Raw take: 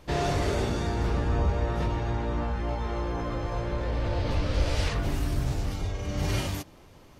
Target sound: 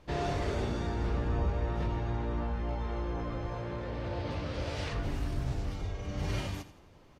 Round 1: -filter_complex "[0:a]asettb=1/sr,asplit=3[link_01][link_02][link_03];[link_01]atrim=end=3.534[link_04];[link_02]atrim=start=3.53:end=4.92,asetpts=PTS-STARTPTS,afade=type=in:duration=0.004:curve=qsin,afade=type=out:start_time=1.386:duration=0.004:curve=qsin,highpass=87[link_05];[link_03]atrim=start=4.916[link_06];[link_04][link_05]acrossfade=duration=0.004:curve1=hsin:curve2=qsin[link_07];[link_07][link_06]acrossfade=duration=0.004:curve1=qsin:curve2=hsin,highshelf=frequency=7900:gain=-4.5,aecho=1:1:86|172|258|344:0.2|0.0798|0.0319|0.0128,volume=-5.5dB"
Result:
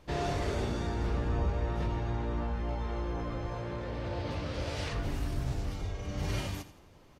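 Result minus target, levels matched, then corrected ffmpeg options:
8,000 Hz band +3.0 dB
-filter_complex "[0:a]asettb=1/sr,asplit=3[link_01][link_02][link_03];[link_01]atrim=end=3.534[link_04];[link_02]atrim=start=3.53:end=4.92,asetpts=PTS-STARTPTS,afade=type=in:duration=0.004:curve=qsin,afade=type=out:start_time=1.386:duration=0.004:curve=qsin,highpass=87[link_05];[link_03]atrim=start=4.916[link_06];[link_04][link_05]acrossfade=duration=0.004:curve1=hsin:curve2=qsin[link_07];[link_07][link_06]acrossfade=duration=0.004:curve1=qsin:curve2=hsin,highshelf=frequency=7900:gain=-12,aecho=1:1:86|172|258|344:0.2|0.0798|0.0319|0.0128,volume=-5.5dB"

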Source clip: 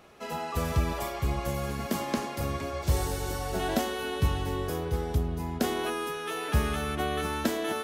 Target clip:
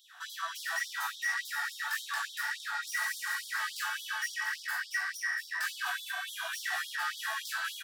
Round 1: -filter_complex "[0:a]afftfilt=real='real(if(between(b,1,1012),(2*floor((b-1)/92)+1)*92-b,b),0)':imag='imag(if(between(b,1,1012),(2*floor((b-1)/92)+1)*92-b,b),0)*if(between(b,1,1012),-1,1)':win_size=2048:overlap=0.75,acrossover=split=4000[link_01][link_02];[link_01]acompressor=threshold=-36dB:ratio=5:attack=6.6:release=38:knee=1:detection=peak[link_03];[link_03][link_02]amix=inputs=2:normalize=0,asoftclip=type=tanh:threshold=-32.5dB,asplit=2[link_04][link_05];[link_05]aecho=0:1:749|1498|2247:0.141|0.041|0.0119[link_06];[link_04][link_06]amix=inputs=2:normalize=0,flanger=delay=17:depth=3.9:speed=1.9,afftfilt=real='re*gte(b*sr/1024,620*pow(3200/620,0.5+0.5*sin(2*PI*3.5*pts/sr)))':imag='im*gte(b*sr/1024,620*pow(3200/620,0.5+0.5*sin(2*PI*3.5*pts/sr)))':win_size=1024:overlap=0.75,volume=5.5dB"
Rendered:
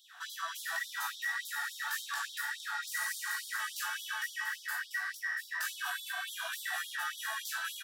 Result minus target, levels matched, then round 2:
downward compressor: peak gain reduction +15 dB
-filter_complex "[0:a]afftfilt=real='real(if(between(b,1,1012),(2*floor((b-1)/92)+1)*92-b,b),0)':imag='imag(if(between(b,1,1012),(2*floor((b-1)/92)+1)*92-b,b),0)*if(between(b,1,1012),-1,1)':win_size=2048:overlap=0.75,asoftclip=type=tanh:threshold=-32.5dB,asplit=2[link_01][link_02];[link_02]aecho=0:1:749|1498|2247:0.141|0.041|0.0119[link_03];[link_01][link_03]amix=inputs=2:normalize=0,flanger=delay=17:depth=3.9:speed=1.9,afftfilt=real='re*gte(b*sr/1024,620*pow(3200/620,0.5+0.5*sin(2*PI*3.5*pts/sr)))':imag='im*gte(b*sr/1024,620*pow(3200/620,0.5+0.5*sin(2*PI*3.5*pts/sr)))':win_size=1024:overlap=0.75,volume=5.5dB"

